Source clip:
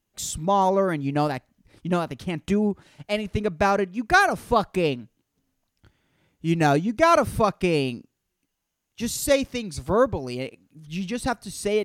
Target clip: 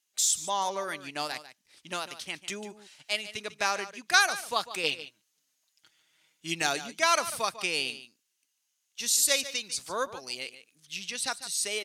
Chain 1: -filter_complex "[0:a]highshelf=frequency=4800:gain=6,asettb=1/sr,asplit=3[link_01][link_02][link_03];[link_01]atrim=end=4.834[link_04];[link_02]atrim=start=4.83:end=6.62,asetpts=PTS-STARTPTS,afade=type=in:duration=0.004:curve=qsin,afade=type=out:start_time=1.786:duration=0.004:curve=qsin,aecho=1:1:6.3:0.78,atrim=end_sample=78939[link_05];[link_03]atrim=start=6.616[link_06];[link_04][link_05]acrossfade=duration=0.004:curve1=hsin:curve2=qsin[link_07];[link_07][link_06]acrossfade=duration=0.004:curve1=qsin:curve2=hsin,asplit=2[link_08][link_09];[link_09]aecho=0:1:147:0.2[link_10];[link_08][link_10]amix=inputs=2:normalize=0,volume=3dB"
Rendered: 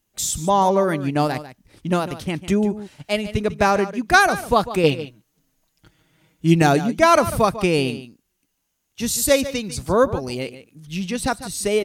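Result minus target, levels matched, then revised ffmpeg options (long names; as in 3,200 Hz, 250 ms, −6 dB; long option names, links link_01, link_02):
4,000 Hz band −8.0 dB
-filter_complex "[0:a]bandpass=frequency=5300:width_type=q:width=0.64:csg=0,highshelf=frequency=4800:gain=6,asettb=1/sr,asplit=3[link_01][link_02][link_03];[link_01]atrim=end=4.834[link_04];[link_02]atrim=start=4.83:end=6.62,asetpts=PTS-STARTPTS,afade=type=in:duration=0.004:curve=qsin,afade=type=out:start_time=1.786:duration=0.004:curve=qsin,aecho=1:1:6.3:0.78,atrim=end_sample=78939[link_05];[link_03]atrim=start=6.616[link_06];[link_04][link_05]acrossfade=duration=0.004:curve1=hsin:curve2=qsin[link_07];[link_07][link_06]acrossfade=duration=0.004:curve1=qsin:curve2=hsin,asplit=2[link_08][link_09];[link_09]aecho=0:1:147:0.2[link_10];[link_08][link_10]amix=inputs=2:normalize=0,volume=3dB"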